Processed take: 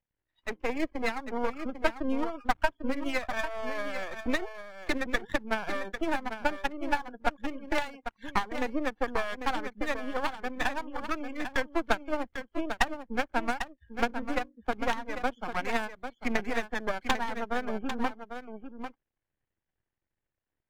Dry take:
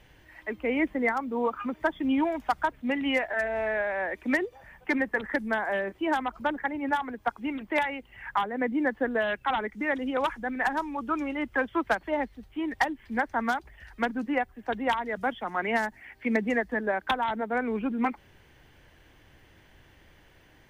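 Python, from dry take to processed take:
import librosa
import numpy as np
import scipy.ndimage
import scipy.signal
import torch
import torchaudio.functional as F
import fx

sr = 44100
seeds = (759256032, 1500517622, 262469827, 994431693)

p1 = fx.wiener(x, sr, points=9)
p2 = fx.transient(p1, sr, attack_db=6, sustain_db=-4)
p3 = fx.hum_notches(p2, sr, base_hz=50, count=6, at=(13.93, 14.56))
p4 = np.maximum(p3, 0.0)
p5 = fx.noise_reduce_blind(p4, sr, reduce_db=27)
p6 = p5 + fx.echo_single(p5, sr, ms=797, db=-9.0, dry=0)
y = p6 * librosa.db_to_amplitude(-1.5)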